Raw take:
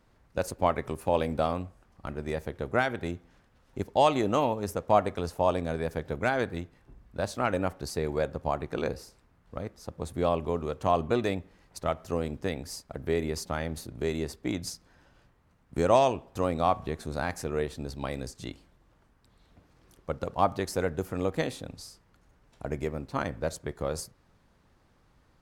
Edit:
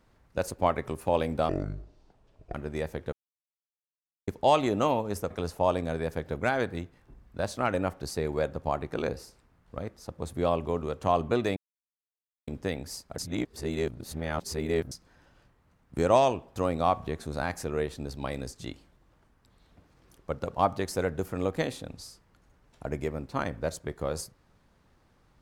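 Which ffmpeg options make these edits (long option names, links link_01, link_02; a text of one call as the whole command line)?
ffmpeg -i in.wav -filter_complex "[0:a]asplit=10[link_01][link_02][link_03][link_04][link_05][link_06][link_07][link_08][link_09][link_10];[link_01]atrim=end=1.494[link_11];[link_02]atrim=start=1.49:end=2.07,asetpts=PTS-STARTPTS,asetrate=24255,aresample=44100,atrim=end_sample=46505,asetpts=PTS-STARTPTS[link_12];[link_03]atrim=start=2.066:end=2.65,asetpts=PTS-STARTPTS,afade=type=out:start_time=0.58:duration=0.004:curve=hsin[link_13];[link_04]atrim=start=2.65:end=3.8,asetpts=PTS-STARTPTS,volume=0[link_14];[link_05]atrim=start=3.8:end=4.832,asetpts=PTS-STARTPTS,afade=type=in:duration=0.004:curve=hsin[link_15];[link_06]atrim=start=5.098:end=11.36,asetpts=PTS-STARTPTS,afade=type=out:start_time=6.258:duration=0.004:curve=hsin[link_16];[link_07]atrim=start=11.36:end=12.27,asetpts=PTS-STARTPTS,volume=0[link_17];[link_08]atrim=start=12.27:end=12.982,asetpts=PTS-STARTPTS,afade=type=in:duration=0.004:curve=hsin[link_18];[link_09]atrim=start=12.978:end=14.712,asetpts=PTS-STARTPTS,areverse[link_19];[link_10]atrim=start=14.708[link_20];[link_11][link_12]acrossfade=duration=0.004:curve1=hsin:curve2=hsin[link_21];[link_13][link_14][link_15]concat=n=3:v=0:a=1[link_22];[link_21][link_22]acrossfade=duration=0.004:curve1=hsin:curve2=hsin[link_23];[link_16][link_17][link_18]concat=n=3:v=0:a=1[link_24];[link_23][link_24]acrossfade=duration=0.004:curve1=hsin:curve2=hsin[link_25];[link_25][link_19]acrossfade=duration=0.004:curve1=hsin:curve2=hsin[link_26];[link_26][link_20]acrossfade=duration=0.004:curve1=hsin:curve2=hsin" out.wav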